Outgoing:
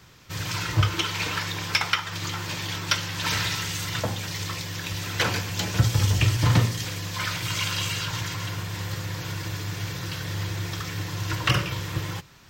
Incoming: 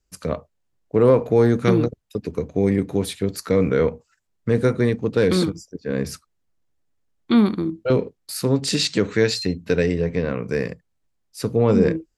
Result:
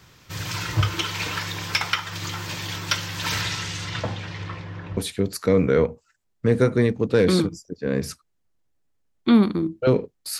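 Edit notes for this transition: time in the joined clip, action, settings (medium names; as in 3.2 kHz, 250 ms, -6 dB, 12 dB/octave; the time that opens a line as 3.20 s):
outgoing
3.41–4.97 s: low-pass 11 kHz -> 1 kHz
4.97 s: go over to incoming from 3.00 s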